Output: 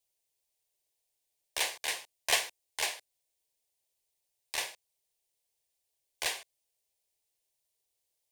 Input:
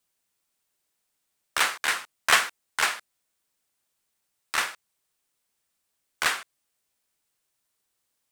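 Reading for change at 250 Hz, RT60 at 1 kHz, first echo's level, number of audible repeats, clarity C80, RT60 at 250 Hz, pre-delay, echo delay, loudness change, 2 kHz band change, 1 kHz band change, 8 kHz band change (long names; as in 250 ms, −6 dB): −10.5 dB, no reverb audible, no echo audible, no echo audible, no reverb audible, no reverb audible, no reverb audible, no echo audible, −8.0 dB, −11.0 dB, −12.5 dB, −4.5 dB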